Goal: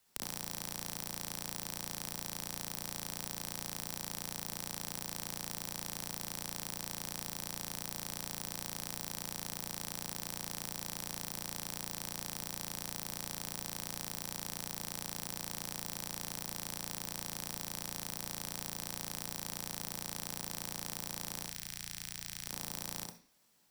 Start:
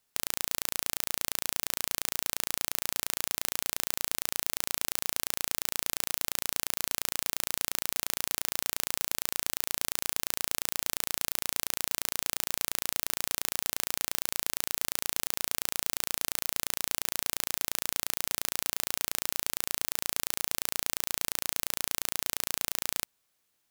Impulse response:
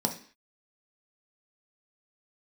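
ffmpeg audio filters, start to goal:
-filter_complex "[0:a]acrossover=split=85|420[link_01][link_02][link_03];[link_01]acompressor=threshold=-58dB:ratio=4[link_04];[link_02]acompressor=threshold=-58dB:ratio=4[link_05];[link_03]acompressor=threshold=-40dB:ratio=4[link_06];[link_04][link_05][link_06]amix=inputs=3:normalize=0,asplit=3[link_07][link_08][link_09];[link_07]afade=type=out:start_time=21.42:duration=0.02[link_10];[link_08]equalizer=frequency=250:width_type=o:width=1:gain=-8,equalizer=frequency=500:width_type=o:width=1:gain=-12,equalizer=frequency=1000:width_type=o:width=1:gain=-9,equalizer=frequency=2000:width_type=o:width=1:gain=3,equalizer=frequency=16000:width_type=o:width=1:gain=-5,afade=type=in:start_time=21.42:duration=0.02,afade=type=out:start_time=22.44:duration=0.02[link_11];[link_09]afade=type=in:start_time=22.44:duration=0.02[link_12];[link_10][link_11][link_12]amix=inputs=3:normalize=0,asplit=2[link_13][link_14];[1:a]atrim=start_sample=2205,adelay=56[link_15];[link_14][link_15]afir=irnorm=-1:irlink=0,volume=-7.5dB[link_16];[link_13][link_16]amix=inputs=2:normalize=0,volume=2.5dB"

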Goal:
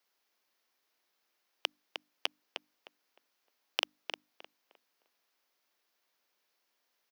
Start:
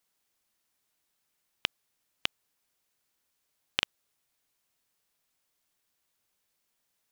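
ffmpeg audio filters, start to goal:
ffmpeg -i in.wav -filter_complex "[0:a]acrossover=split=500|1000[link_01][link_02][link_03];[link_01]alimiter=level_in=13.5dB:limit=-24dB:level=0:latency=1,volume=-13.5dB[link_04];[link_04][link_02][link_03]amix=inputs=3:normalize=0,aeval=exprs='0.299*(abs(mod(val(0)/0.299+3,4)-2)-1)':channel_layout=same,lowshelf=frequency=110:gain=7,asplit=2[link_05][link_06];[link_06]adelay=307,lowpass=frequency=2200:poles=1,volume=-6dB,asplit=2[link_07][link_08];[link_08]adelay=307,lowpass=frequency=2200:poles=1,volume=0.29,asplit=2[link_09][link_10];[link_10]adelay=307,lowpass=frequency=2200:poles=1,volume=0.29,asplit=2[link_11][link_12];[link_12]adelay=307,lowpass=frequency=2200:poles=1,volume=0.29[link_13];[link_07][link_09][link_11][link_13]amix=inputs=4:normalize=0[link_14];[link_05][link_14]amix=inputs=2:normalize=0,aexciter=amount=1.3:drive=6.9:freq=4700,asoftclip=type=hard:threshold=-11.5dB,acrossover=split=250 4700:gain=0.0631 1 0.178[link_15][link_16][link_17];[link_15][link_16][link_17]amix=inputs=3:normalize=0,bandreject=frequency=50:width_type=h:width=6,bandreject=frequency=100:width_type=h:width=6,bandreject=frequency=150:width_type=h:width=6,bandreject=frequency=200:width_type=h:width=6,bandreject=frequency=250:width_type=h:width=6,bandreject=frequency=300:width_type=h:width=6,volume=2.5dB" out.wav

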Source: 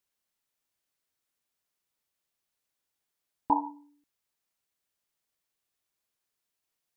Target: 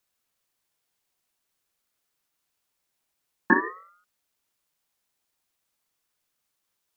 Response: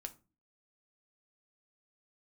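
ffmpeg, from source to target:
-af "afreqshift=-200,aeval=exprs='val(0)*sin(2*PI*1100*n/s+1100*0.25/0.48*sin(2*PI*0.48*n/s))':channel_layout=same,volume=8.5dB"

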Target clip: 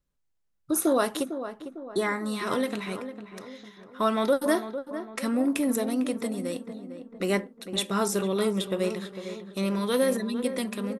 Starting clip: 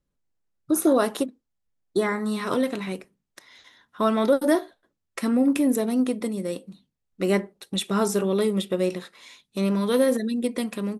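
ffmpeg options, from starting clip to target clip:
ffmpeg -i in.wav -filter_complex "[0:a]equalizer=frequency=280:width=0.5:gain=-5,asplit=2[link_01][link_02];[link_02]adelay=452,lowpass=frequency=1500:poles=1,volume=-10dB,asplit=2[link_03][link_04];[link_04]adelay=452,lowpass=frequency=1500:poles=1,volume=0.5,asplit=2[link_05][link_06];[link_06]adelay=452,lowpass=frequency=1500:poles=1,volume=0.5,asplit=2[link_07][link_08];[link_08]adelay=452,lowpass=frequency=1500:poles=1,volume=0.5,asplit=2[link_09][link_10];[link_10]adelay=452,lowpass=frequency=1500:poles=1,volume=0.5[link_11];[link_01][link_03][link_05][link_07][link_09][link_11]amix=inputs=6:normalize=0" out.wav

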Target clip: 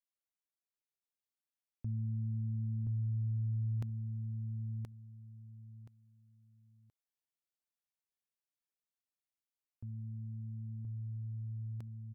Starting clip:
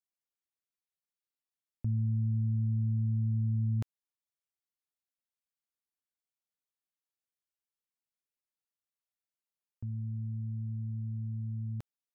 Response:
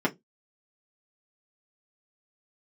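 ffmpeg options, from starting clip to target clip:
-af "aecho=1:1:1025|2050|3075:0.668|0.154|0.0354,volume=-6.5dB"

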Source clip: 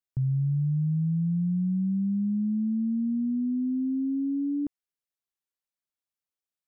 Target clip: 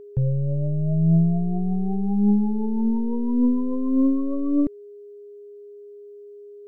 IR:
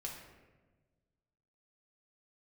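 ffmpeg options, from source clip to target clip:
-af "aeval=exprs='0.0841*(cos(1*acos(clip(val(0)/0.0841,-1,1)))-cos(1*PI/2))+0.00422*(cos(2*acos(clip(val(0)/0.0841,-1,1)))-cos(2*PI/2))+0.0119*(cos(4*acos(clip(val(0)/0.0841,-1,1)))-cos(4*PI/2))':channel_layout=same,aphaser=in_gain=1:out_gain=1:delay=3.9:decay=0.49:speed=0.87:type=triangular,aeval=exprs='val(0)+0.00631*sin(2*PI*410*n/s)':channel_layout=same,volume=4.5dB"

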